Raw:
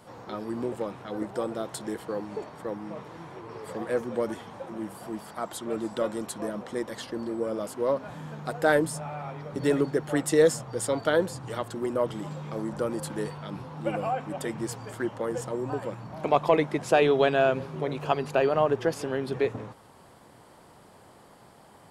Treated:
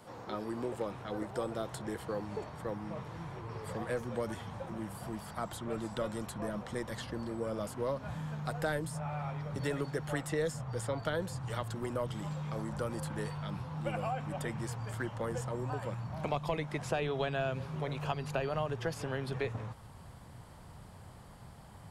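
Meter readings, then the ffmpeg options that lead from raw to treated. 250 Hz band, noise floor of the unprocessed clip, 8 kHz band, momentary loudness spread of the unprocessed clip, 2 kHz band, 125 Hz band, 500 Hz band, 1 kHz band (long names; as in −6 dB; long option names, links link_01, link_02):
−8.0 dB, −54 dBFS, −9.0 dB, 15 LU, −7.5 dB, 0.0 dB, −10.5 dB, −8.5 dB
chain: -filter_complex "[0:a]asubboost=boost=7.5:cutoff=120,acrossover=split=420|2800[link_01][link_02][link_03];[link_01]acompressor=threshold=-36dB:ratio=4[link_04];[link_02]acompressor=threshold=-32dB:ratio=4[link_05];[link_03]acompressor=threshold=-45dB:ratio=4[link_06];[link_04][link_05][link_06]amix=inputs=3:normalize=0,volume=-2dB"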